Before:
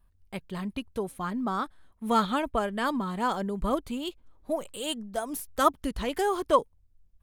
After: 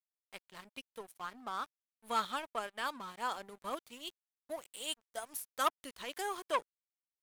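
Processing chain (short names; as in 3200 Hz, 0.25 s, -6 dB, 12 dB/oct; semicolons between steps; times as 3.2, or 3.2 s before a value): HPF 1300 Hz 6 dB/oct; crossover distortion -48.5 dBFS; core saturation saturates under 1600 Hz; gain -3 dB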